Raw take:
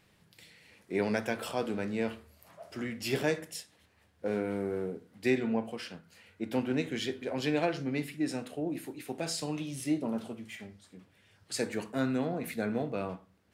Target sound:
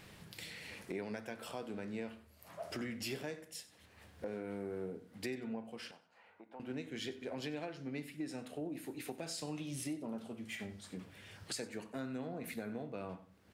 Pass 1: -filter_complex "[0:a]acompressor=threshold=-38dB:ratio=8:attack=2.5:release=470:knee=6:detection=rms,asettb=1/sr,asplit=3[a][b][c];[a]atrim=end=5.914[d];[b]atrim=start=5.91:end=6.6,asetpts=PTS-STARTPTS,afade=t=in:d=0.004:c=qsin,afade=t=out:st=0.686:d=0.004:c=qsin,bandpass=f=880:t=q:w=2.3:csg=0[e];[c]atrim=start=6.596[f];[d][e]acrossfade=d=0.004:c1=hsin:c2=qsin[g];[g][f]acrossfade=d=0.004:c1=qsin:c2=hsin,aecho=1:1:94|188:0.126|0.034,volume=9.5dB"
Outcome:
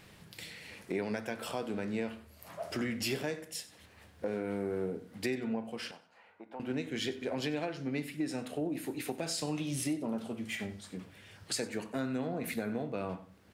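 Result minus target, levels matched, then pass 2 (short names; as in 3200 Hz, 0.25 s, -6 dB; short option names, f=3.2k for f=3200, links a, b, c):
compressor: peak gain reduction -7 dB
-filter_complex "[0:a]acompressor=threshold=-46dB:ratio=8:attack=2.5:release=470:knee=6:detection=rms,asettb=1/sr,asplit=3[a][b][c];[a]atrim=end=5.914[d];[b]atrim=start=5.91:end=6.6,asetpts=PTS-STARTPTS,afade=t=in:d=0.004:c=qsin,afade=t=out:st=0.686:d=0.004:c=qsin,bandpass=f=880:t=q:w=2.3:csg=0[e];[c]atrim=start=6.596[f];[d][e]acrossfade=d=0.004:c1=hsin:c2=qsin[g];[g][f]acrossfade=d=0.004:c1=qsin:c2=hsin,aecho=1:1:94|188:0.126|0.034,volume=9.5dB"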